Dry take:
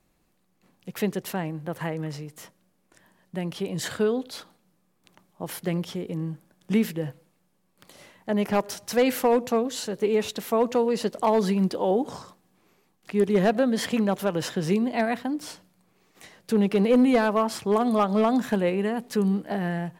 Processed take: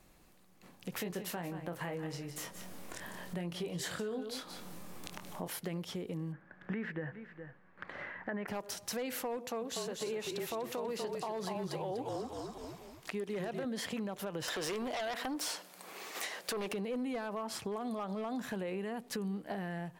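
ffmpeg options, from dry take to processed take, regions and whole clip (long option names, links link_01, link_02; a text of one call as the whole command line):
ffmpeg -i in.wav -filter_complex "[0:a]asettb=1/sr,asplit=3[link_01][link_02][link_03];[link_01]atrim=end=0.924[link_04];[link_02]atrim=start=0.92:end=5.48,asetpts=PTS-STARTPTS,afade=type=in:duration=0.004:curve=qsin,afade=type=out:start_time=4.556:duration=0.004:curve=qsin,acompressor=mode=upward:threshold=-38dB:ratio=2.5:attack=3.2:release=140:knee=2.83:detection=peak,asplit=2[link_05][link_06];[link_06]adelay=23,volume=-6.5dB[link_07];[link_05][link_07]amix=inputs=2:normalize=0,atrim=end_sample=201096,aecho=1:1:177:0.211,atrim=end_sample=201096[link_08];[link_03]atrim=start=5.476[link_09];[link_04][link_08]acrossfade=duration=0.004:curve1=hsin:curve2=qsin[link_10];[link_10][link_09]acrossfade=duration=0.004:curve1=qsin:curve2=hsin,asettb=1/sr,asplit=3[link_11][link_12][link_13];[link_11]atrim=end=6.324[link_14];[link_12]atrim=start=6.32:end=8.48,asetpts=PTS-STARTPTS,afade=type=in:duration=0.004:curve=qsin,afade=type=out:start_time=2.156:duration=0.004:curve=qsin,lowpass=frequency=1700:width_type=q:width=4.3,aecho=1:1:415:0.0668,atrim=end_sample=95256[link_15];[link_13]atrim=start=8.476[link_16];[link_14][link_15]acrossfade=duration=0.004:curve1=hsin:curve2=qsin[link_17];[link_17][link_16]acrossfade=duration=0.004:curve1=qsin:curve2=hsin,asettb=1/sr,asplit=3[link_18][link_19][link_20];[link_18]atrim=end=9.374[link_21];[link_19]atrim=start=9.37:end=13.65,asetpts=PTS-STARTPTS,afade=type=in:duration=0.004:curve=qsin,afade=type=out:start_time=4.276:duration=0.004:curve=qsin,lowshelf=frequency=200:gain=-9.5,asplit=5[link_22][link_23][link_24][link_25][link_26];[link_23]adelay=244,afreqshift=-39,volume=-5dB[link_27];[link_24]adelay=488,afreqshift=-78,volume=-14.9dB[link_28];[link_25]adelay=732,afreqshift=-117,volume=-24.8dB[link_29];[link_26]adelay=976,afreqshift=-156,volume=-34.7dB[link_30];[link_22][link_27][link_28][link_29][link_30]amix=inputs=5:normalize=0,atrim=end_sample=188748[link_31];[link_20]atrim=start=13.646[link_32];[link_21][link_31]acrossfade=duration=0.004:curve1=hsin:curve2=qsin[link_33];[link_33][link_32]acrossfade=duration=0.004:curve1=qsin:curve2=hsin,asettb=1/sr,asplit=3[link_34][link_35][link_36];[link_34]atrim=end=14.484[link_37];[link_35]atrim=start=14.48:end=16.73,asetpts=PTS-STARTPTS,afade=type=in:duration=0.004:curve=qsin,afade=type=out:start_time=2.246:duration=0.004:curve=qsin,highpass=440,acompressor=threshold=-39dB:ratio=2.5:attack=3.2:release=140:knee=1:detection=peak,aeval=exprs='0.0668*sin(PI/2*3.55*val(0)/0.0668)':channel_layout=same[link_38];[link_36]atrim=start=16.726[link_39];[link_37][link_38]acrossfade=duration=0.004:curve1=hsin:curve2=qsin[link_40];[link_40][link_39]acrossfade=duration=0.004:curve1=qsin:curve2=hsin,equalizer=frequency=200:width=0.6:gain=-3,alimiter=limit=-20.5dB:level=0:latency=1:release=34,acompressor=threshold=-48dB:ratio=3,volume=6.5dB" out.wav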